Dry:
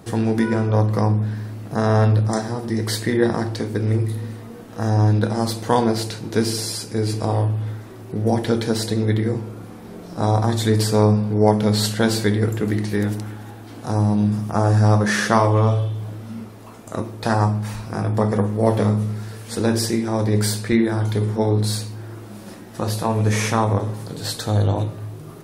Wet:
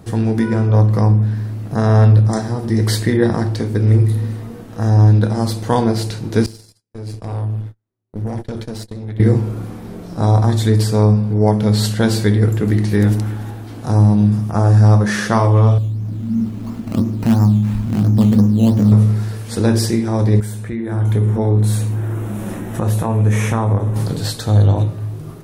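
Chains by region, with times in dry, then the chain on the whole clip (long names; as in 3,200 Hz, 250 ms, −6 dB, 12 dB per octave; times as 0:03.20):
0:06.46–0:09.20: noise gate −24 dBFS, range −55 dB + downward compressor 3 to 1, threshold −36 dBFS + tube saturation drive 32 dB, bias 0.6
0:15.78–0:18.92: sample-and-hold swept by an LFO 10×, swing 60% 2.9 Hz + downward compressor 1.5 to 1, threshold −30 dBFS + drawn EQ curve 160 Hz 0 dB, 230 Hz +9 dB, 420 Hz −7 dB
0:20.40–0:23.96: parametric band 4,700 Hz −15 dB 0.52 octaves + downward compressor 2 to 1, threshold −35 dBFS
whole clip: low-shelf EQ 160 Hz +10 dB; automatic gain control; level −1 dB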